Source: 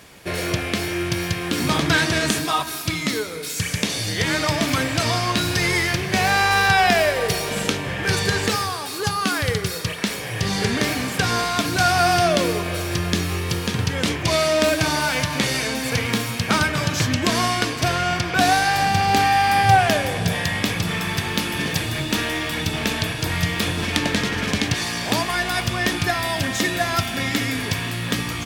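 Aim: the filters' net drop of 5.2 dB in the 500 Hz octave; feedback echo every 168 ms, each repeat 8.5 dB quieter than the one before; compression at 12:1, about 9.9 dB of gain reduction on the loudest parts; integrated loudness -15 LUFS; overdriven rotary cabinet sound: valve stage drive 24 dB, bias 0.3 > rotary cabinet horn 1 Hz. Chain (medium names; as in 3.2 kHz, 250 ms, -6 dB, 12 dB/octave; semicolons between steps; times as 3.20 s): peaking EQ 500 Hz -7.5 dB; compression 12:1, threshold -22 dBFS; feedback delay 168 ms, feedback 38%, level -8.5 dB; valve stage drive 24 dB, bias 0.3; rotary cabinet horn 1 Hz; trim +16 dB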